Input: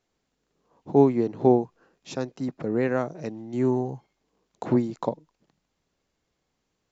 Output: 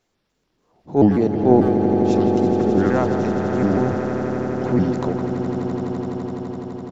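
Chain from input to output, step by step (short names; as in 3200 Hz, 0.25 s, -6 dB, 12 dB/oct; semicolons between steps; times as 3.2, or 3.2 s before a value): trilling pitch shifter -4.5 st, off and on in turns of 0.145 s; speakerphone echo 0.16 s, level -15 dB; transient shaper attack -7 dB, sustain +5 dB; on a send: swelling echo 84 ms, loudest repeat 8, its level -11 dB; on the sum: gain +5.5 dB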